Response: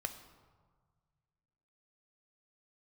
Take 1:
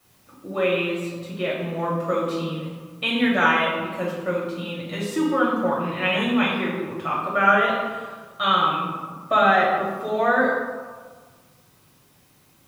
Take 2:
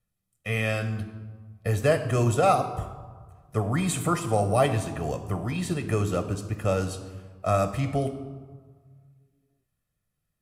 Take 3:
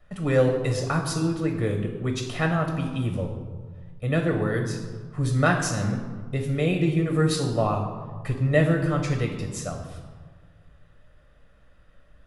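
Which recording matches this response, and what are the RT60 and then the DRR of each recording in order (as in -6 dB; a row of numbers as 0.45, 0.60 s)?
2; 1.6, 1.6, 1.6 s; -5.5, 8.0, 2.5 dB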